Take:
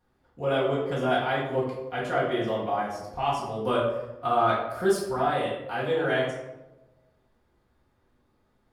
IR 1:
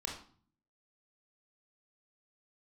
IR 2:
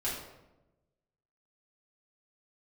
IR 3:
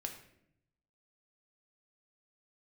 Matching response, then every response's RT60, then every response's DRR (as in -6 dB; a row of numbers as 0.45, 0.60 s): 2; 0.45, 1.0, 0.75 s; -1.5, -8.5, 3.0 dB